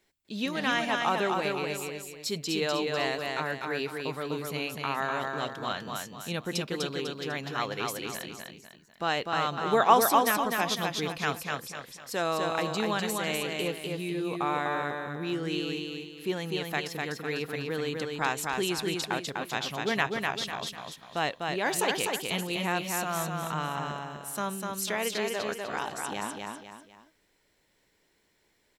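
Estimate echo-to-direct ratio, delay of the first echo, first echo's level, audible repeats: -3.0 dB, 249 ms, -3.5 dB, 3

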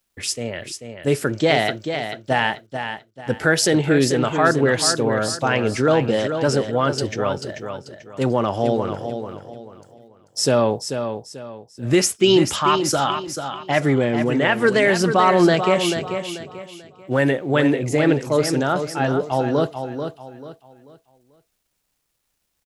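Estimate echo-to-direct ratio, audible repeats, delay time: -7.5 dB, 3, 439 ms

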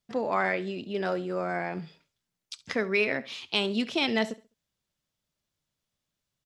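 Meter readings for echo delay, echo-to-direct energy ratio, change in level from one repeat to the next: 68 ms, -18.5 dB, -10.5 dB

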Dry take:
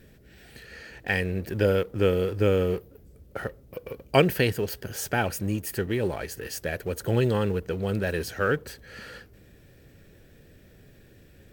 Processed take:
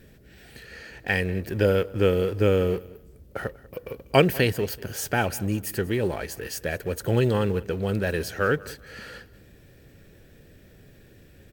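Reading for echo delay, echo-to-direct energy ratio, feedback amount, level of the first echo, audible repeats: 192 ms, -20.5 dB, 25%, -21.0 dB, 2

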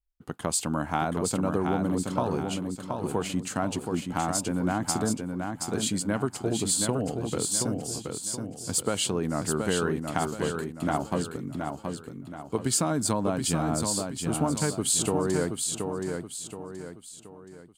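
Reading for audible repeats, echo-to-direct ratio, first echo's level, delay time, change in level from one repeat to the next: 4, -4.0 dB, -5.0 dB, 725 ms, -7.5 dB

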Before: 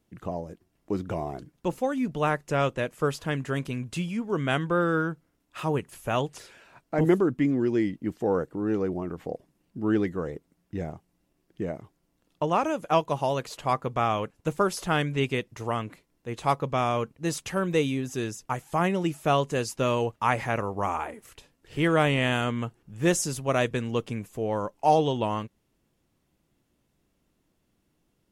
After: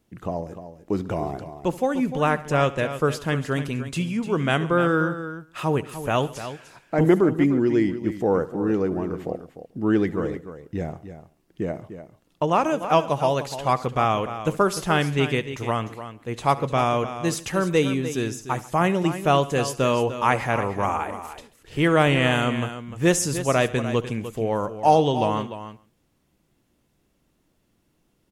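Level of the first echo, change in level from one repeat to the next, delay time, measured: -18.5 dB, no regular repeats, 70 ms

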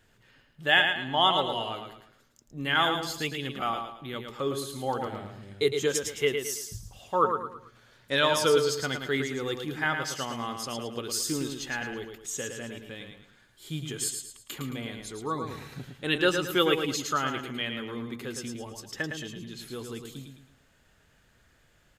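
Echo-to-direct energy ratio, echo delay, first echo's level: -5.5 dB, 110 ms, -6.0 dB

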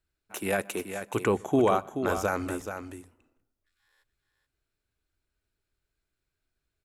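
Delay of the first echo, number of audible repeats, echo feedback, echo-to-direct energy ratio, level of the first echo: 429 ms, 1, no regular repeats, -8.5 dB, -8.5 dB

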